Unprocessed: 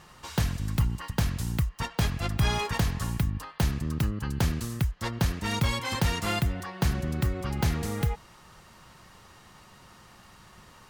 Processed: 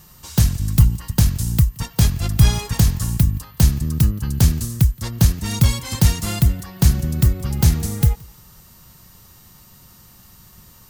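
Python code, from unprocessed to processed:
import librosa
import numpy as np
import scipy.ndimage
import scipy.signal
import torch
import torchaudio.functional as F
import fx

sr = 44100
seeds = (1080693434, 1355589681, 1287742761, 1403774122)

p1 = 10.0 ** (-30.0 / 20.0) * np.tanh(x / 10.0 ** (-30.0 / 20.0))
p2 = x + (p1 * librosa.db_to_amplitude(-12.0))
p3 = fx.bass_treble(p2, sr, bass_db=8, treble_db=15)
p4 = p3 + fx.echo_feedback(p3, sr, ms=173, feedback_pct=31, wet_db=-21.5, dry=0)
p5 = p4 + 10.0 ** (-44.0 / 20.0) * np.sin(2.0 * np.pi * 14000.0 * np.arange(len(p4)) / sr)
p6 = fx.low_shelf(p5, sr, hz=470.0, db=4.0)
p7 = fx.upward_expand(p6, sr, threshold_db=-23.0, expansion=1.5)
y = p7 * librosa.db_to_amplitude(1.5)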